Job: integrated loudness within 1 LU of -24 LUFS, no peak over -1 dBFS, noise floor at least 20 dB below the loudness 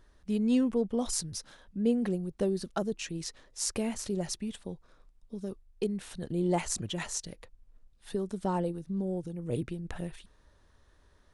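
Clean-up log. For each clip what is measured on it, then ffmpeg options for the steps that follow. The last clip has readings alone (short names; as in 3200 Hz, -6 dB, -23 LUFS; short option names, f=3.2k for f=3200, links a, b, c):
loudness -33.0 LUFS; peak -12.5 dBFS; loudness target -24.0 LUFS
-> -af "volume=9dB"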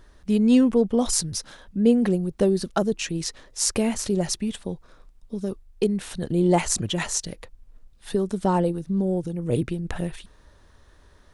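loudness -24.0 LUFS; peak -3.5 dBFS; noise floor -54 dBFS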